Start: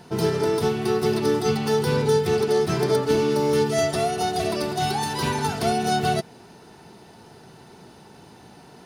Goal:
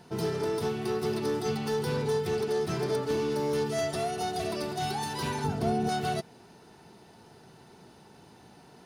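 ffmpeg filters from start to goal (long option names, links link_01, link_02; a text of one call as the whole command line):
ffmpeg -i in.wav -filter_complex "[0:a]asoftclip=type=tanh:threshold=-15dB,asettb=1/sr,asplit=3[link_01][link_02][link_03];[link_01]atrim=end=5.444[link_04];[link_02]atrim=start=5.44:end=5.89,asetpts=PTS-STARTPTS,afade=type=in:duration=0.004:curve=qsin,afade=type=out:start_time=0.446:duration=0.004:curve=qsin,tiltshelf=frequency=770:gain=7[link_05];[link_03]atrim=start=5.886[link_06];[link_04][link_05]acrossfade=duration=0.004:curve1=hsin:curve2=qsin[link_07];[link_07][link_06]acrossfade=duration=0.004:curve1=qsin:curve2=hsin,volume=-6.5dB" out.wav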